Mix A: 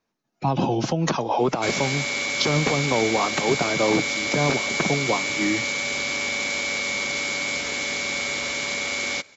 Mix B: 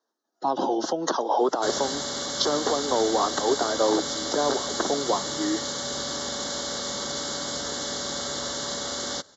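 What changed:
speech: add high-pass filter 300 Hz 24 dB per octave
master: add Butterworth band-reject 2,400 Hz, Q 1.5

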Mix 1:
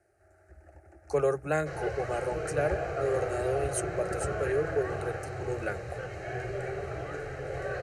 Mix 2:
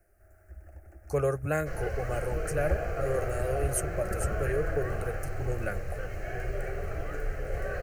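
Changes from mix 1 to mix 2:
speech: remove Butterworth high-pass 150 Hz 72 dB per octave
master: remove loudspeaker in its box 100–9,400 Hz, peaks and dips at 130 Hz +6 dB, 210 Hz −7 dB, 380 Hz +4 dB, 850 Hz +6 dB, 3,800 Hz +9 dB

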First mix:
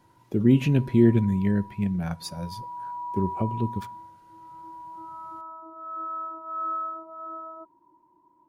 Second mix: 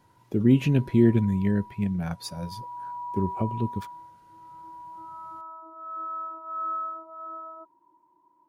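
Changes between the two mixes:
background: add low-shelf EQ 370 Hz −9 dB
reverb: off

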